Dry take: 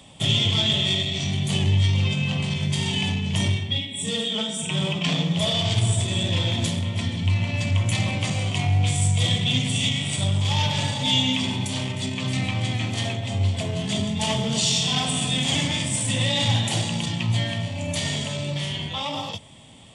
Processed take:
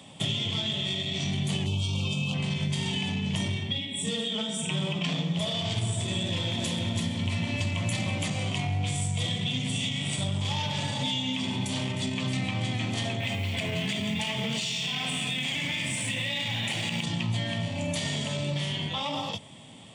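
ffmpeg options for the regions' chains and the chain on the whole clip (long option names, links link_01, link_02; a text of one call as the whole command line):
ffmpeg -i in.wav -filter_complex "[0:a]asettb=1/sr,asplit=3[link_01][link_02][link_03];[link_01]atrim=end=1.664[link_04];[link_02]atrim=start=1.66:end=2.34,asetpts=PTS-STARTPTS,afade=type=in:duration=0.004:curve=qsin,afade=type=out:start_time=0.676:duration=0.004:curve=qsin,asuperstop=centerf=1800:order=8:qfactor=1.8,highshelf=frequency=5700:gain=10.5[link_05];[link_03]atrim=start=2.336[link_06];[link_04][link_05]acrossfade=duration=0.004:curve1=hsin:curve2=qsin[link_07];[link_07][link_06]acrossfade=duration=0.004:curve1=qsin:curve2=hsin,asettb=1/sr,asplit=3[link_08][link_09][link_10];[link_08]atrim=end=6.264[link_11];[link_09]atrim=start=6.26:end=8.28,asetpts=PTS-STARTPTS,afade=type=in:duration=0.004:curve=qsin,afade=type=out:start_time=2.016:duration=0.004:curve=qsin,highshelf=frequency=8200:gain=6.5,aecho=1:1:332:0.668,atrim=end_sample=89082[link_12];[link_10]atrim=start=8.276[link_13];[link_11][link_12]acrossfade=duration=0.004:curve1=hsin:curve2=qsin[link_14];[link_14][link_13]acrossfade=duration=0.004:curve1=qsin:curve2=hsin,asettb=1/sr,asplit=3[link_15][link_16][link_17];[link_15]atrim=end=13.204[link_18];[link_16]atrim=start=13.2:end=17.04,asetpts=PTS-STARTPTS,afade=type=in:duration=0.004:curve=qsin,afade=type=out:start_time=3.836:duration=0.004:curve=qsin,equalizer=frequency=2300:width=1.5:gain=12,acompressor=threshold=-21dB:ratio=6:attack=3.2:release=140:knee=1:detection=peak,acrusher=bits=7:mode=log:mix=0:aa=0.000001[link_19];[link_17]atrim=start=17.036[link_20];[link_18][link_19]acrossfade=duration=0.004:curve1=hsin:curve2=qsin[link_21];[link_21][link_20]acrossfade=duration=0.004:curve1=qsin:curve2=hsin,highpass=140,acompressor=threshold=-27dB:ratio=6,bass=frequency=250:gain=3,treble=frequency=4000:gain=-2" out.wav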